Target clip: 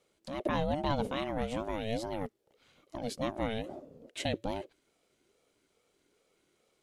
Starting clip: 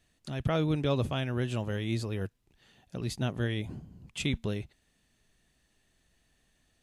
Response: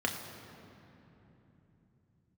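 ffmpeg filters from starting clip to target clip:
-af "aeval=exprs='val(0)*sin(2*PI*410*n/s+410*0.2/2.4*sin(2*PI*2.4*n/s))':c=same"

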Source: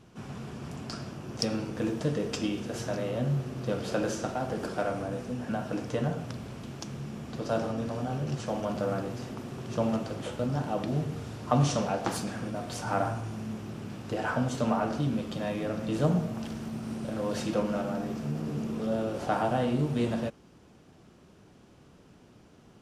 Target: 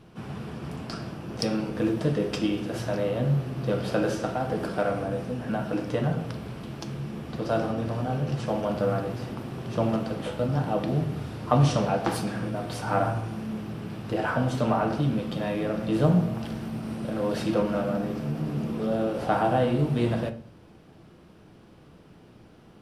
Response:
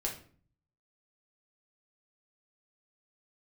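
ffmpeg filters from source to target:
-filter_complex "[0:a]equalizer=f=6.8k:w=2.1:g=-9.5,asplit=2[a][b];[1:a]atrim=start_sample=2205[c];[b][c]afir=irnorm=-1:irlink=0,volume=-5.5dB[d];[a][d]amix=inputs=2:normalize=0"

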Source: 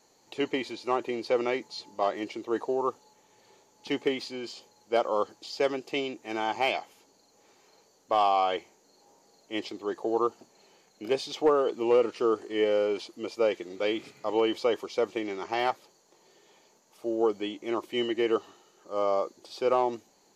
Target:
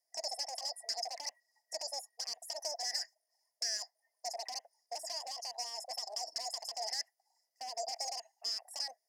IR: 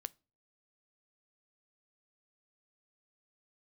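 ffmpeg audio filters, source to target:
-filter_complex "[0:a]afftdn=nr=21:nf=-47,lowshelf=f=480:g=6.5,acompressor=threshold=-29dB:ratio=12,acrossover=split=2100[a][b];[b]alimiter=level_in=19.5dB:limit=-24dB:level=0:latency=1:release=121,volume=-19.5dB[c];[a][c]amix=inputs=2:normalize=0,aeval=exprs='0.0316*(abs(mod(val(0)/0.0316+3,4)-2)-1)':c=same,asplit=3[d][e][f];[d]bandpass=f=300:t=q:w=8,volume=0dB[g];[e]bandpass=f=870:t=q:w=8,volume=-6dB[h];[f]bandpass=f=2.24k:t=q:w=8,volume=-9dB[i];[g][h][i]amix=inputs=3:normalize=0,asetrate=98784,aresample=44100,aexciter=amount=11.8:drive=7:freq=3.7k,volume=1dB"

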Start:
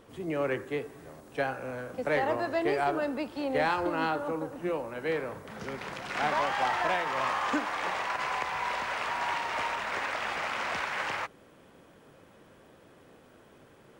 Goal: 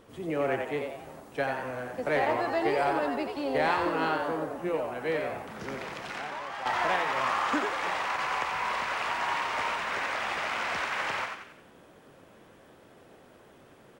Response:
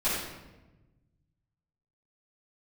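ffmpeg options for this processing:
-filter_complex "[0:a]asettb=1/sr,asplit=3[a][b][c];[a]atrim=end=5.784[d];[b]atrim=start=5.78:end=6.66,asetpts=PTS-STARTPTS,afade=t=in:d=0.004:c=qsin,afade=t=out:st=0.876:d=0.004:c=qsin,acompressor=threshold=-35dB:ratio=12[e];[c]atrim=start=6.656[f];[d][e]acrossfade=d=0.004:c1=hsin:c2=qsin[g];[g][f]acrossfade=d=0.004:c1=qsin:c2=hsin,asplit=2[h][i];[i]asplit=5[j][k][l][m][n];[j]adelay=89,afreqshift=120,volume=-5dB[o];[k]adelay=178,afreqshift=240,volume=-12.1dB[p];[l]adelay=267,afreqshift=360,volume=-19.3dB[q];[m]adelay=356,afreqshift=480,volume=-26.4dB[r];[n]adelay=445,afreqshift=600,volume=-33.5dB[s];[o][p][q][r][s]amix=inputs=5:normalize=0[t];[h][t]amix=inputs=2:normalize=0"

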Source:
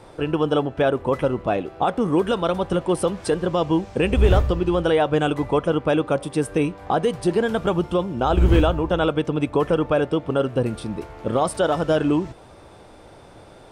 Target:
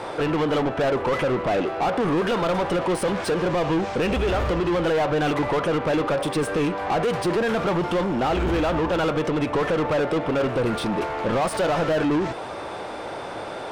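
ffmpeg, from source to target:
-filter_complex "[0:a]alimiter=limit=-16dB:level=0:latency=1:release=43,asplit=2[a][b];[b]highpass=f=720:p=1,volume=25dB,asoftclip=type=tanh:threshold=-16dB[c];[a][c]amix=inputs=2:normalize=0,lowpass=f=2.3k:p=1,volume=-6dB"

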